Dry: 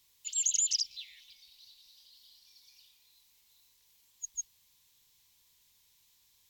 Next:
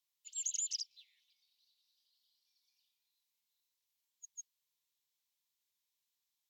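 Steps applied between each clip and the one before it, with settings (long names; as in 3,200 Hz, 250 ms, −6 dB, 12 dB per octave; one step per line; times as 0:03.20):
high-pass filter 340 Hz 6 dB per octave
expander for the loud parts 1.5 to 1, over −49 dBFS
level −8 dB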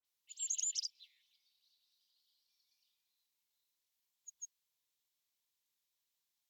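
all-pass dispersion highs, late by 51 ms, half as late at 2,800 Hz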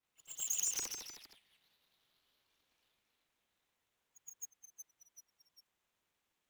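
running median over 9 samples
delay with pitch and tempo change per echo 104 ms, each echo −1 semitone, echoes 3, each echo −6 dB
echo ahead of the sound 118 ms −12 dB
level +8 dB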